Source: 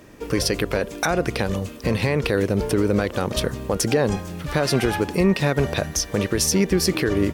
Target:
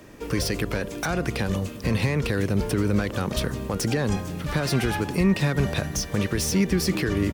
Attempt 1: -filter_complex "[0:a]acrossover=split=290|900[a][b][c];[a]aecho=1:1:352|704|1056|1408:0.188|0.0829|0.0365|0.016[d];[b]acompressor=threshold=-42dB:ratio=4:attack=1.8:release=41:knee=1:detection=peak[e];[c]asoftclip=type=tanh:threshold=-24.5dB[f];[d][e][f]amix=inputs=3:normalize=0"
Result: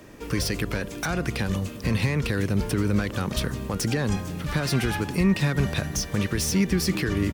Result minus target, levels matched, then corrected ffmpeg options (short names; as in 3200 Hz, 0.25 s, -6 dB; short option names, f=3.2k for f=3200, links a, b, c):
compressor: peak gain reduction +6.5 dB
-filter_complex "[0:a]acrossover=split=290|900[a][b][c];[a]aecho=1:1:352|704|1056|1408:0.188|0.0829|0.0365|0.016[d];[b]acompressor=threshold=-33.5dB:ratio=4:attack=1.8:release=41:knee=1:detection=peak[e];[c]asoftclip=type=tanh:threshold=-24.5dB[f];[d][e][f]amix=inputs=3:normalize=0"